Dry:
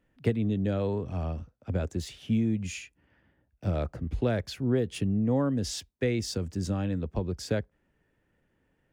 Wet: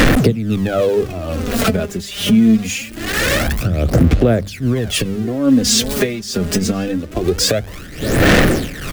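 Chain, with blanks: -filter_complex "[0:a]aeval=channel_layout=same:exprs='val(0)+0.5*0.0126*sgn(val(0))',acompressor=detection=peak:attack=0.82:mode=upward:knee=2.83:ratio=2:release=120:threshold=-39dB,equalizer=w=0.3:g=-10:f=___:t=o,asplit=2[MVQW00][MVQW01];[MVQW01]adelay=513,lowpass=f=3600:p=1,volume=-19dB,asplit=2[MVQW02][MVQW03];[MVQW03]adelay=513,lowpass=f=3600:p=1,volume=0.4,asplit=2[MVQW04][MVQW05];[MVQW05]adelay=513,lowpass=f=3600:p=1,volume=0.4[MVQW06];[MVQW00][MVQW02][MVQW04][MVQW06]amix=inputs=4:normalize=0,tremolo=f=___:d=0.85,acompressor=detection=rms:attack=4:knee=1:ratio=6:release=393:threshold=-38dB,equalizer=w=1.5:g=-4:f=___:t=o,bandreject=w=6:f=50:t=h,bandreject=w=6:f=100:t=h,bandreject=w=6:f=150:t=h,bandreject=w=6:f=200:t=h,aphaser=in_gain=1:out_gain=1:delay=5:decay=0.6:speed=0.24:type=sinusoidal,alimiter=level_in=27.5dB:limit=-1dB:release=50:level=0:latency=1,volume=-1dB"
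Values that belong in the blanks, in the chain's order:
920, 1.2, 72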